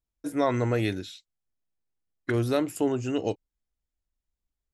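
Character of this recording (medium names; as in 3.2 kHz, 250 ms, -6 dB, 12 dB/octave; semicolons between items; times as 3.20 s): noise floor -88 dBFS; spectral tilt -6.0 dB/octave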